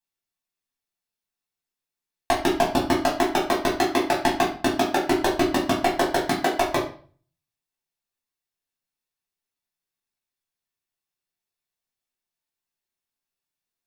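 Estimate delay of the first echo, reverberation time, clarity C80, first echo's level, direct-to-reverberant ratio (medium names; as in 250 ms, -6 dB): no echo, 0.45 s, 12.0 dB, no echo, -5.0 dB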